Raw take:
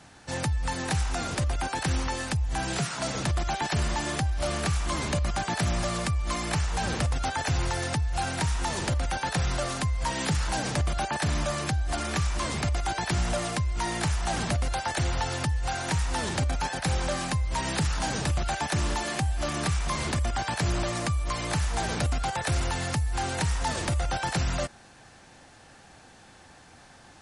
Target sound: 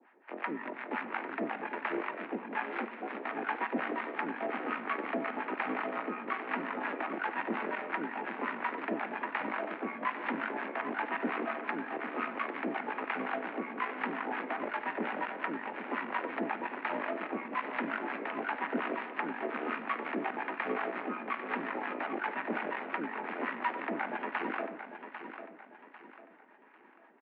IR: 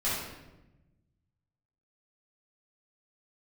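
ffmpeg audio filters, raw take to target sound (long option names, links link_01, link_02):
-filter_complex "[0:a]aeval=exprs='0.141*(cos(1*acos(clip(val(0)/0.141,-1,1)))-cos(1*PI/2))+0.0282*(cos(4*acos(clip(val(0)/0.141,-1,1)))-cos(4*PI/2))+0.0316*(cos(7*acos(clip(val(0)/0.141,-1,1)))-cos(7*PI/2))':channel_layout=same,acrossover=split=620[link_01][link_02];[link_01]aeval=exprs='val(0)*(1-1/2+1/2*cos(2*PI*5.6*n/s))':channel_layout=same[link_03];[link_02]aeval=exprs='val(0)*(1-1/2-1/2*cos(2*PI*5.6*n/s))':channel_layout=same[link_04];[link_03][link_04]amix=inputs=2:normalize=0,highpass=frequency=180:width_type=q:width=0.5412,highpass=frequency=180:width_type=q:width=1.307,lowpass=frequency=2300:width_type=q:width=0.5176,lowpass=frequency=2300:width_type=q:width=0.7071,lowpass=frequency=2300:width_type=q:width=1.932,afreqshift=83,aecho=1:1:797|1594|2391|3188:0.316|0.12|0.0457|0.0174,asplit=2[link_05][link_06];[1:a]atrim=start_sample=2205,adelay=36[link_07];[link_06][link_07]afir=irnorm=-1:irlink=0,volume=-22dB[link_08];[link_05][link_08]amix=inputs=2:normalize=0"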